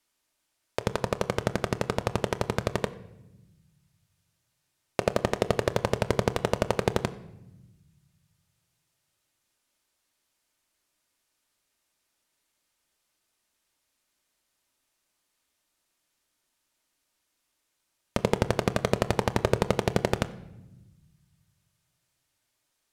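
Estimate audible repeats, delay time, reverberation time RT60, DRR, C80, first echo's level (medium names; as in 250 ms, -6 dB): no echo, no echo, 0.95 s, 9.0 dB, 18.0 dB, no echo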